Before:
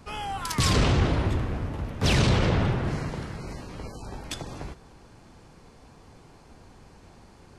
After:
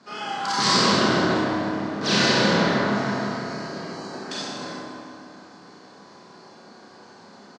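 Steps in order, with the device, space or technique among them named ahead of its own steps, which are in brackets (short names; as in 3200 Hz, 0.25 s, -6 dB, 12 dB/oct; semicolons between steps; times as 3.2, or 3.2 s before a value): television speaker (speaker cabinet 200–6600 Hz, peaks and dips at 290 Hz -3 dB, 490 Hz -6 dB, 880 Hz -4 dB, 1600 Hz +4 dB, 2500 Hz -4 dB, 4400 Hz +6 dB); bell 2600 Hz -3 dB 1.4 oct; doubler 29 ms -5 dB; dark delay 0.156 s, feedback 65%, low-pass 1500 Hz, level -4 dB; Schroeder reverb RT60 1.4 s, combs from 31 ms, DRR -6 dB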